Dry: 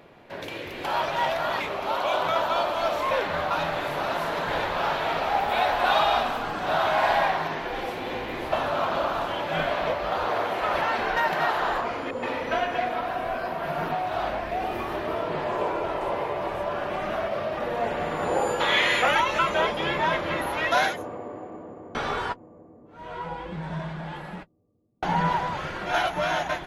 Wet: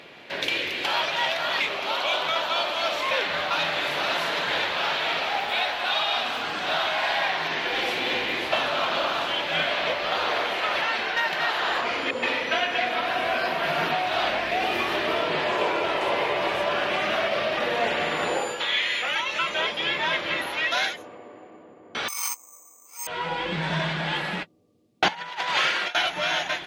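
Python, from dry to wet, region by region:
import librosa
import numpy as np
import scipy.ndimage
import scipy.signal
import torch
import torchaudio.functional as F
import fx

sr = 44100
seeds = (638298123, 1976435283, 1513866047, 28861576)

y = fx.chain(x, sr, fx.double_bandpass(hz=1600.0, octaves=0.98),
    fx.over_compress(threshold_db=-41.0, ratio=-1.0),
    fx.resample_bad(factor=6, down='none', up='zero_stuff'), at=(22.08, 23.07))
y = fx.chain(y, sr, fx.highpass(hz=680.0, slope=6),
    fx.over_compress(threshold_db=-34.0, ratio=-0.5), at=(25.08, 25.95))
y = fx.weighting(y, sr, curve='D')
y = fx.rider(y, sr, range_db=10, speed_s=0.5)
y = y * 10.0 ** (-3.0 / 20.0)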